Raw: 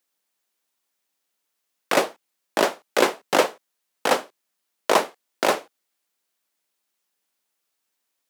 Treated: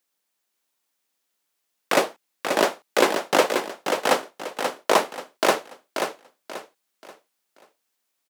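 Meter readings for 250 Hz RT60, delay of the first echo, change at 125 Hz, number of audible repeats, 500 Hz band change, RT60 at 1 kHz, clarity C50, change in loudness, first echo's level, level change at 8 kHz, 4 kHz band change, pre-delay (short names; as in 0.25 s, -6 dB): none, 0.534 s, +1.0 dB, 4, +1.0 dB, none, none, -0.5 dB, -6.0 dB, +1.0 dB, +1.0 dB, none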